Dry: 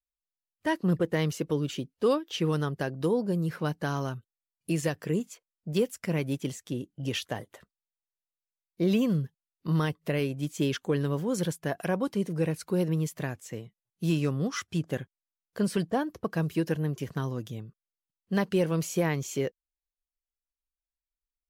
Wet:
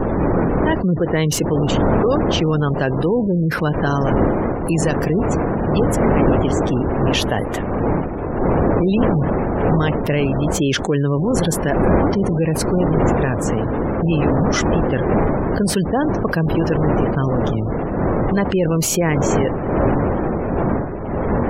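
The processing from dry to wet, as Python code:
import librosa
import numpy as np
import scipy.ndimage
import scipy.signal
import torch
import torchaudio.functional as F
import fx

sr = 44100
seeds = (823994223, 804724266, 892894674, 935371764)

y = fx.dmg_wind(x, sr, seeds[0], corner_hz=470.0, level_db=-28.0)
y = fx.spec_gate(y, sr, threshold_db=-30, keep='strong')
y = fx.env_flatten(y, sr, amount_pct=70)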